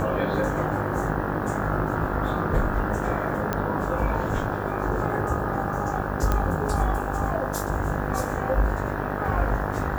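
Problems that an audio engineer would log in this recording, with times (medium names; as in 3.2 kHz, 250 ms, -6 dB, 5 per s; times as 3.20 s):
buzz 50 Hz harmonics 34 -30 dBFS
3.53 s: pop -11 dBFS
6.32 s: pop -10 dBFS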